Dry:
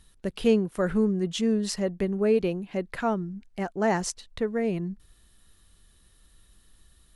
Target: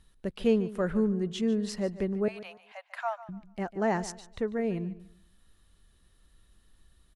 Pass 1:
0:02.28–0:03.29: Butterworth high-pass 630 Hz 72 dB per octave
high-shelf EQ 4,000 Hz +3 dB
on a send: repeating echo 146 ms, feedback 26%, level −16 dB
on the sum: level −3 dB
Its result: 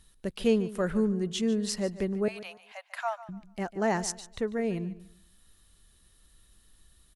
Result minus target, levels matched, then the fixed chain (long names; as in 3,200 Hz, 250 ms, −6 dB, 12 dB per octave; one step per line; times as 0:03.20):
8,000 Hz band +7.5 dB
0:02.28–0:03.29: Butterworth high-pass 630 Hz 72 dB per octave
high-shelf EQ 4,000 Hz −7.5 dB
on a send: repeating echo 146 ms, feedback 26%, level −16 dB
on the sum: level −3 dB